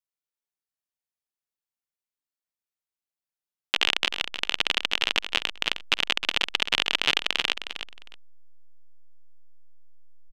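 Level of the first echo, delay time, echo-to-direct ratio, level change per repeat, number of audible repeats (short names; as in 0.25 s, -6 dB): -9.5 dB, 0.311 s, -9.5 dB, -15.5 dB, 2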